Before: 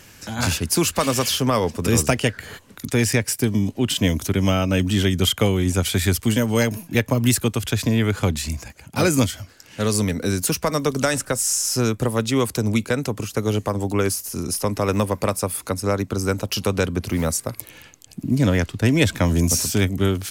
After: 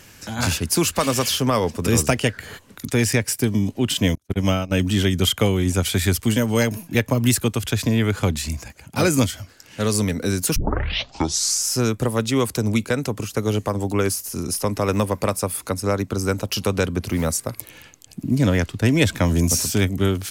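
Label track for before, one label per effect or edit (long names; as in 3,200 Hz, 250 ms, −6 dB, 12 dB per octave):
4.150000	4.720000	noise gate −20 dBFS, range −41 dB
10.560000	10.560000	tape start 1.11 s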